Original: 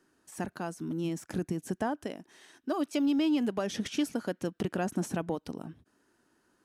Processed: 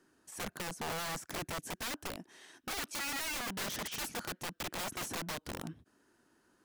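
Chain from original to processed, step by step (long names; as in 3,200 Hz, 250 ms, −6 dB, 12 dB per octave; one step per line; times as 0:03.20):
wrap-around overflow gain 33 dB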